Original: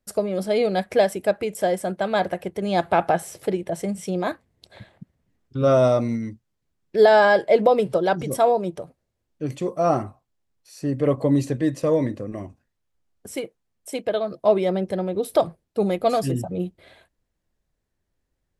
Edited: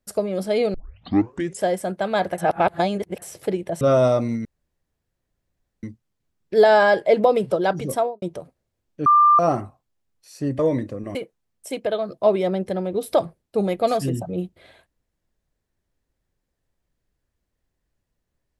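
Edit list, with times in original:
0:00.74: tape start 0.89 s
0:02.38–0:03.22: reverse
0:03.81–0:05.61: remove
0:06.25: splice in room tone 1.38 s
0:08.32–0:08.64: fade out and dull
0:09.48–0:09.81: beep over 1,190 Hz −10.5 dBFS
0:11.01–0:11.87: remove
0:12.43–0:13.37: remove

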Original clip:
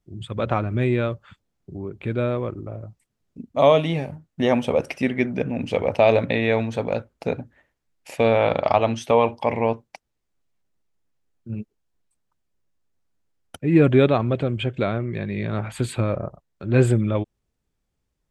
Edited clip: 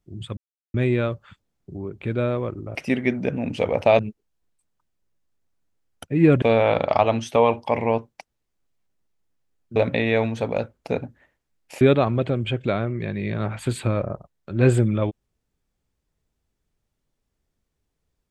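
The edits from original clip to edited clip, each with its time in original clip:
0:00.37–0:00.74: silence
0:02.75–0:04.88: remove
0:06.12–0:08.17: swap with 0:11.51–0:13.94

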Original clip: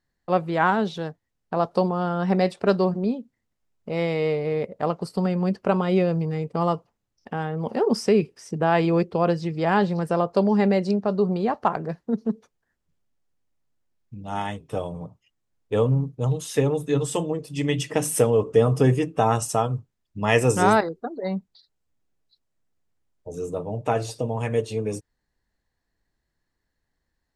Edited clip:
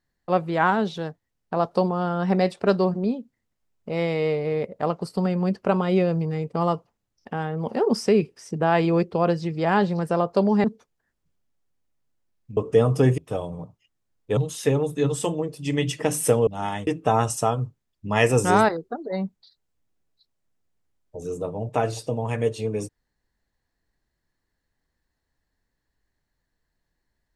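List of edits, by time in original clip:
0:10.64–0:12.27: remove
0:14.20–0:14.60: swap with 0:18.38–0:18.99
0:15.79–0:16.28: remove

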